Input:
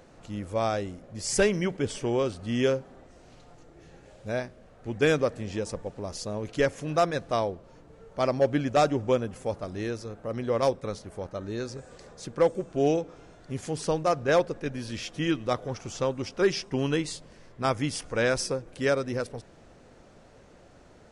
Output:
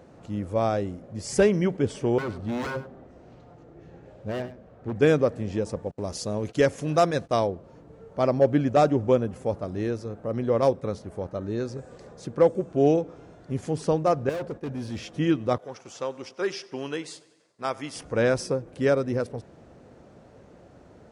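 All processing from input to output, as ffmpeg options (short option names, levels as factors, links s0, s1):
-filter_complex "[0:a]asettb=1/sr,asplit=3[s0][s1][s2];[s0]atrim=end=2.184[s3];[s1]atrim=start=2.18:end=4.96,asetpts=PTS-STARTPTS,afade=t=in:d=0.004:c=qsin,afade=t=out:st=2.776:d=0.004:c=qsin,aemphasis=mode=reproduction:type=50fm,aeval=exprs='0.0422*(abs(mod(val(0)/0.0422+3,4)-2)-1)':c=same,aecho=1:1:99:0.2,atrim=end_sample=122598[s4];[s2]atrim=start=4.956[s5];[s3][s4]acrossfade=d=0.004:c1=hsin:c2=qsin[s6];[s6][s5]acrossfade=d=0.004:c1=qsin:c2=hsin,asettb=1/sr,asplit=3[s7][s8][s9];[s7]atrim=end=5.914[s10];[s8]atrim=start=5.91:end=7.47,asetpts=PTS-STARTPTS,afade=t=in:d=0.004:c=qsin,afade=t=out:st=1.556:d=0.004:c=qsin,agate=range=0.0398:threshold=0.00501:ratio=16:release=100:detection=peak,highshelf=f=2800:g=9[s11];[s9]atrim=start=7.466[s12];[s10][s11]acrossfade=d=0.004:c1=hsin:c2=qsin[s13];[s13][s12]acrossfade=d=0.004:c1=qsin:c2=hsin,asettb=1/sr,asplit=3[s14][s15][s16];[s14]atrim=end=14.294[s17];[s15]atrim=start=14.29:end=14.99,asetpts=PTS-STARTPTS,afade=t=in:d=0.004:c=qsin,afade=t=out:st=0.696:d=0.004:c=qsin,agate=range=0.0224:threshold=0.0112:ratio=3:release=100:detection=peak,asoftclip=type=hard:threshold=0.0251[s18];[s16]atrim=start=14.986[s19];[s17][s18]acrossfade=d=0.004:c1=hsin:c2=qsin[s20];[s20][s19]acrossfade=d=0.004:c1=qsin:c2=hsin,asettb=1/sr,asplit=3[s21][s22][s23];[s21]atrim=end=15.584[s24];[s22]atrim=start=15.58:end=17.96,asetpts=PTS-STARTPTS,afade=t=in:d=0.004:c=qsin,afade=t=out:st=2.376:d=0.004:c=qsin,agate=range=0.0224:threshold=0.00708:ratio=3:release=100:detection=peak,highpass=f=990:p=1,aecho=1:1:96|192|288|384|480:0.0841|0.0496|0.0293|0.0173|0.0102,atrim=end_sample=104958[s25];[s23]atrim=start=17.956[s26];[s24][s25]acrossfade=d=0.004:c1=hsin:c2=qsin[s27];[s27][s26]acrossfade=d=0.004:c1=qsin:c2=hsin,highpass=66,tiltshelf=f=1200:g=5"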